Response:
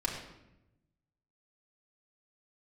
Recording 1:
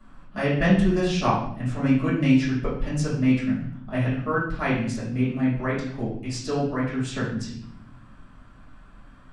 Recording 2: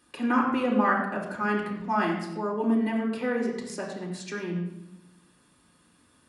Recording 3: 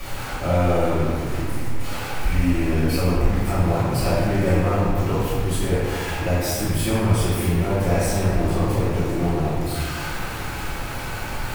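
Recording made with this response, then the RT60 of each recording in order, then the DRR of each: 2; 0.60 s, 0.90 s, 2.0 s; -10.5 dB, -2.0 dB, -12.0 dB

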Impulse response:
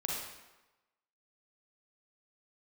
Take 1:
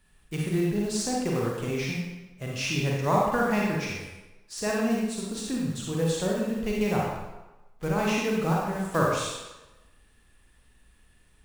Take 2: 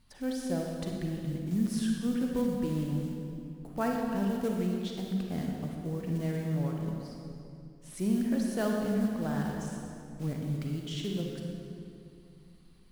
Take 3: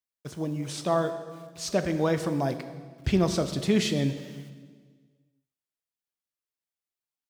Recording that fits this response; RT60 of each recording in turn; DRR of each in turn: 1; 1.1 s, 2.6 s, 1.6 s; -3.5 dB, 0.0 dB, 8.5 dB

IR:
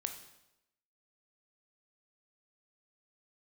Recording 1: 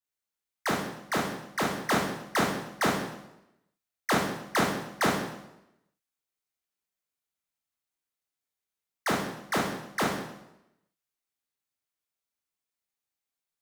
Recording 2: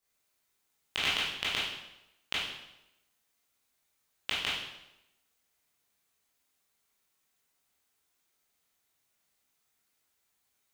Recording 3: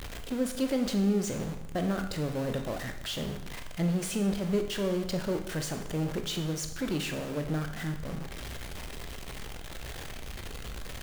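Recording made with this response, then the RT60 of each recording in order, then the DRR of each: 3; 0.90 s, 0.90 s, 0.90 s; -3.5 dB, -8.5 dB, 5.5 dB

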